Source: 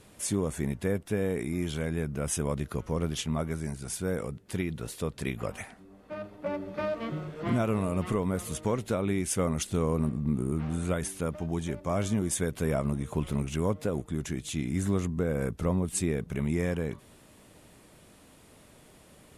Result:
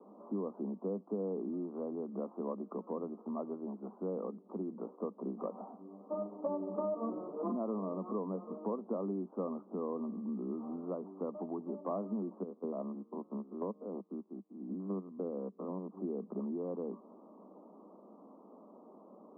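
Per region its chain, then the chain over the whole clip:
12.43–15.89 stepped spectrum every 0.1 s + upward expander 2.5:1, over -42 dBFS
whole clip: steep low-pass 1200 Hz 96 dB/oct; compressor 5:1, threshold -35 dBFS; steep high-pass 190 Hz 96 dB/oct; gain +2.5 dB

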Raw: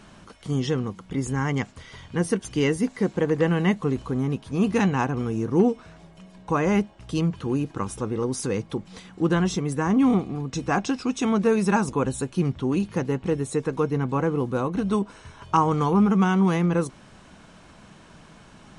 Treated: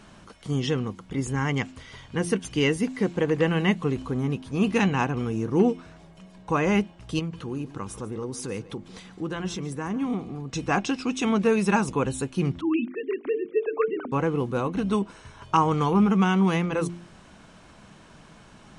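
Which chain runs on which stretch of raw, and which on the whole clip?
7.19–10.5 compressor 1.5:1, threshold -36 dBFS + echo 0.145 s -17 dB
12.61–14.12 sine-wave speech + notches 50/100/150/200/250/300/350/400/450 Hz
whole clip: de-hum 86.4 Hz, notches 4; dynamic EQ 2700 Hz, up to +6 dB, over -48 dBFS, Q 1.8; gain -1 dB

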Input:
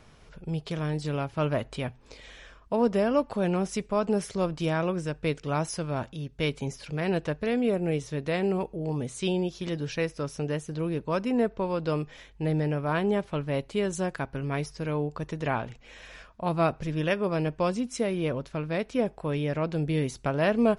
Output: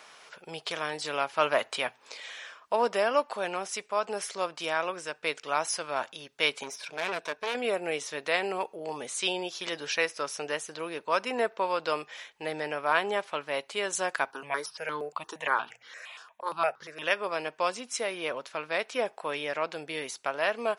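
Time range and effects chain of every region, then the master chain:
6.63–7.55 ripple EQ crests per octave 1.6, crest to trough 8 dB + tube stage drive 27 dB, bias 0.75
14.31–17.02 notches 60/120/180 Hz + step phaser 8.6 Hz 580–2500 Hz
whole clip: HPF 800 Hz 12 dB/oct; vocal rider 2 s; gain +5 dB

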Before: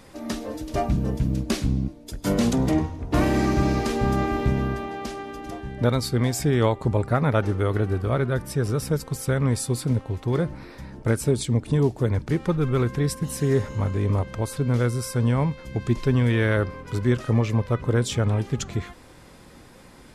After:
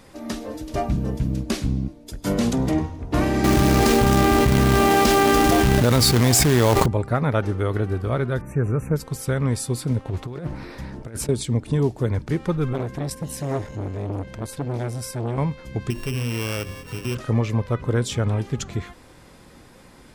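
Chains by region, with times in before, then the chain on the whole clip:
3.44–6.86 companded quantiser 4-bit + fast leveller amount 100%
8.41–8.96 brick-wall FIR band-stop 2800–5800 Hz + tone controls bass +3 dB, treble -13 dB
10.05–11.29 negative-ratio compressor -27 dBFS, ratio -0.5 + Doppler distortion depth 0.31 ms
12.73–15.38 bell 1200 Hz -11.5 dB 0.22 oct + core saturation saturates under 680 Hz
15.9–17.15 sample sorter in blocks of 16 samples + notches 50/100/150/200/250/300/350/400 Hz + compressor 2:1, threshold -26 dBFS
whole clip: dry

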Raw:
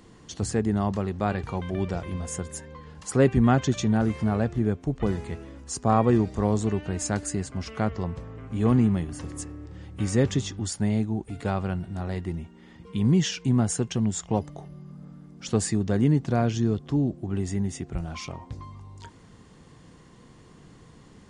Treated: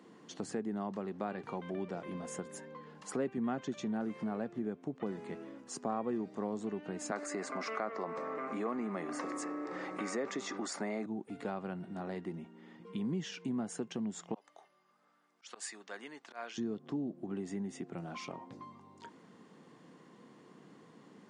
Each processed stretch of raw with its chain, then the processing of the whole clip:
7.11–11.06 speaker cabinet 360–8800 Hz, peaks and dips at 640 Hz +5 dB, 1200 Hz +9 dB, 2100 Hz +6 dB, 3100 Hz -9 dB + fast leveller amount 50%
14.34–16.58 HPF 1200 Hz + auto swell 0.103 s
whole clip: HPF 190 Hz 24 dB/oct; high shelf 3500 Hz -10.5 dB; compressor 2.5:1, threshold -34 dBFS; gain -3 dB

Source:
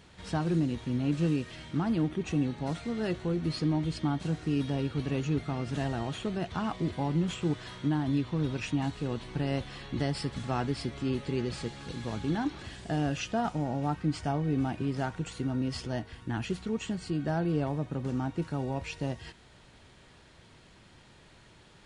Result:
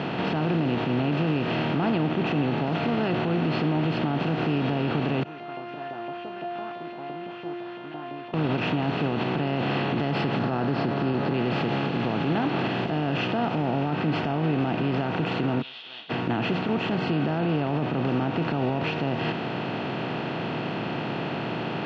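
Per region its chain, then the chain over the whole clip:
5.23–8.34 LFO band-pass saw up 5.9 Hz 570–2800 Hz + resonator 350 Hz, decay 0.86 s, mix 100%
10.39–11.34 LPF 4900 Hz 24 dB/oct + band shelf 2700 Hz -13.5 dB 1 oct
15.59–16.09 spectral whitening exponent 0.6 + Butterworth band-pass 3500 Hz, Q 7.7 + ensemble effect
whole clip: per-bin compression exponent 0.4; Chebyshev band-pass 120–3200 Hz, order 3; limiter -22 dBFS; gain +5.5 dB

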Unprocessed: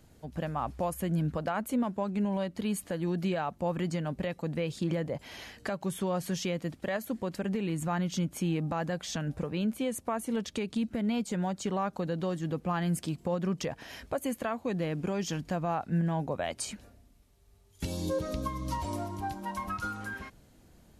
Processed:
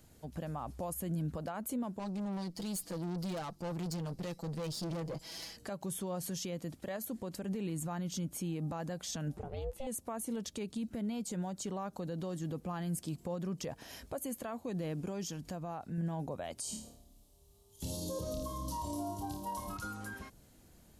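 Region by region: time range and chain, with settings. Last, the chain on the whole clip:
1.99–5.57 bell 4900 Hz +11.5 dB 0.51 oct + comb 6.1 ms, depth 84% + tube stage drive 32 dB, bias 0.5
9.37–9.87 high shelf 4600 Hz -9.5 dB + ring modulator 270 Hz
15.27–15.98 compressor 2:1, threshold -38 dBFS + mismatched tape noise reduction encoder only
16.61–19.77 band shelf 1800 Hz -11.5 dB 1.1 oct + flutter echo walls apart 4.7 m, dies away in 0.45 s
whole clip: high shelf 5600 Hz +8 dB; limiter -26.5 dBFS; dynamic EQ 2100 Hz, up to -6 dB, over -54 dBFS, Q 0.81; gain -3 dB

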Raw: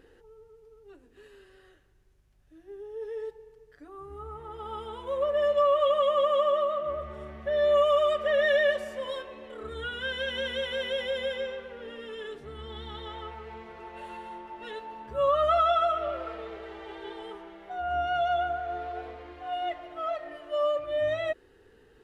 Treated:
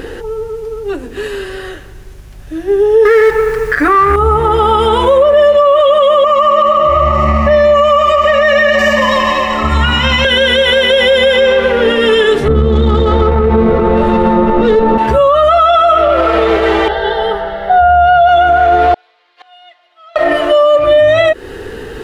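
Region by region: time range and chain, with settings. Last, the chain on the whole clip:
3.05–4.16 G.711 law mismatch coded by mu + band shelf 1600 Hz +12 dB 1.3 oct
6.24–10.25 fixed phaser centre 2300 Hz, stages 8 + multi-head echo 77 ms, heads second and third, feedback 59%, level -9 dB
12.48–14.98 tube stage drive 39 dB, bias 0.6 + tilt -3.5 dB/oct + small resonant body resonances 210/480/1200/3700 Hz, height 11 dB, ringing for 20 ms
16.88–18.29 high shelf 2300 Hz -9 dB + fixed phaser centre 1600 Hz, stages 8
18.94–20.16 flipped gate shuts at -37 dBFS, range -38 dB + HPF 910 Hz + bell 4200 Hz +12 dB 1.2 oct
whole clip: compressor 6:1, threshold -34 dBFS; maximiser +33.5 dB; gain -1 dB

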